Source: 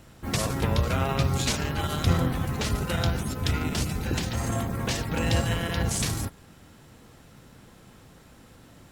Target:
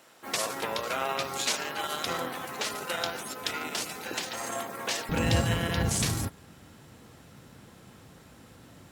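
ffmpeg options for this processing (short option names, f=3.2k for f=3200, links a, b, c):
-af "asetnsamples=n=441:p=0,asendcmd='5.09 highpass f 67',highpass=490"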